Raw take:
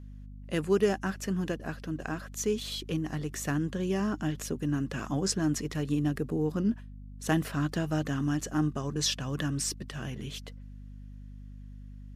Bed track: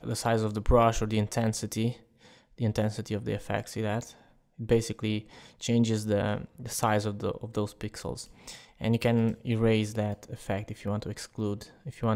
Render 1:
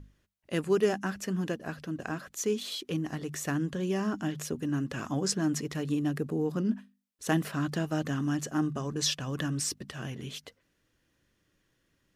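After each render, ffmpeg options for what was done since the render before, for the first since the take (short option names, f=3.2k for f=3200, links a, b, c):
-af "bandreject=f=50:t=h:w=6,bandreject=f=100:t=h:w=6,bandreject=f=150:t=h:w=6,bandreject=f=200:t=h:w=6,bandreject=f=250:t=h:w=6"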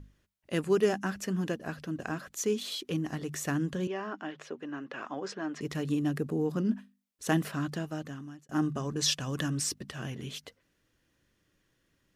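-filter_complex "[0:a]asettb=1/sr,asplit=3[a][b][c];[a]atrim=end=3.874[d];[b]atrim=start=3.87:end=5.61,asetpts=PTS-STARTPTS,afade=t=in:d=0.004:c=qsin,afade=t=out:st=1.736:d=0.004:c=qsin,highpass=440,lowpass=2.8k[e];[c]atrim=start=5.606[f];[d][e]acrossfade=d=0.004:c1=hsin:c2=qsin[g];[g][f]acrossfade=d=0.004:c1=qsin:c2=hsin,asettb=1/sr,asplit=3[h][i][j];[h]atrim=end=9.084[k];[i]atrim=start=9.08:end=9.5,asetpts=PTS-STARTPTS,afade=t=in:d=0.004:c=qsin,afade=t=out:st=0.416:d=0.004:c=qsin,equalizer=f=8.2k:w=0.62:g=5[l];[j]atrim=start=9.496[m];[k][l]acrossfade=d=0.004:c1=hsin:c2=qsin[n];[n][m]acrossfade=d=0.004:c1=qsin:c2=hsin,asplit=2[o][p];[o]atrim=end=8.49,asetpts=PTS-STARTPTS,afade=t=out:st=7.39:d=1.1[q];[p]atrim=start=8.49,asetpts=PTS-STARTPTS,afade=t=in:d=0.004:c=hsin[r];[q][r]concat=n=2:v=0:a=1"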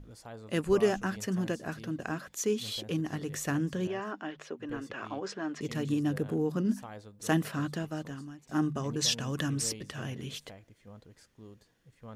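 -filter_complex "[1:a]volume=-19.5dB[a];[0:a][a]amix=inputs=2:normalize=0"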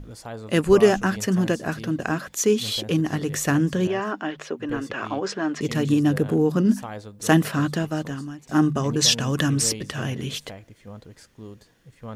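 -af "volume=10dB"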